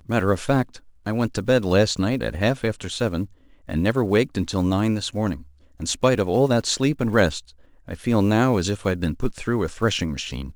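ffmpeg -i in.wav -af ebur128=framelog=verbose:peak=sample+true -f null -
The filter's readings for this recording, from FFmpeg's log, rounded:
Integrated loudness:
  I:         -22.4 LUFS
  Threshold: -32.8 LUFS
Loudness range:
  LRA:         2.2 LU
  Threshold: -42.7 LUFS
  LRA low:   -23.7 LUFS
  LRA high:  -21.5 LUFS
Sample peak:
  Peak:       -4.6 dBFS
True peak:
  Peak:       -4.5 dBFS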